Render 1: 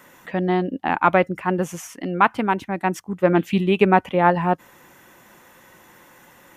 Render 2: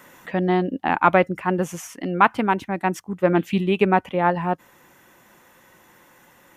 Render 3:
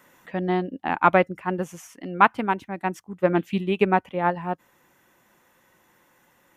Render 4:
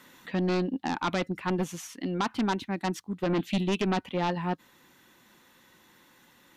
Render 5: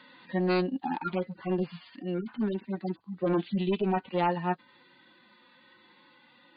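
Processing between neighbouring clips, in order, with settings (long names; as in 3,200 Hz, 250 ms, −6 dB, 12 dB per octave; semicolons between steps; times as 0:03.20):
speech leveller within 3 dB 2 s; level −1 dB
expander for the loud parts 1.5 to 1, over −27 dBFS
graphic EQ with 15 bands 250 Hz +5 dB, 630 Hz −5 dB, 4,000 Hz +11 dB; brickwall limiter −14 dBFS, peak gain reduction 11.5 dB; sine wavefolder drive 5 dB, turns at −14 dBFS; level −8 dB
harmonic-percussive split with one part muted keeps harmonic; linear-phase brick-wall low-pass 4,900 Hz; low-shelf EQ 200 Hz −10 dB; level +4 dB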